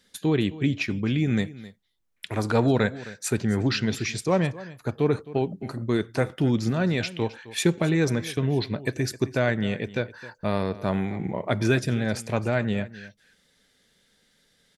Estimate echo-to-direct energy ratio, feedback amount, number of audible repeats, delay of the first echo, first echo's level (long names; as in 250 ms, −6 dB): −17.5 dB, repeats not evenly spaced, 1, 263 ms, −17.5 dB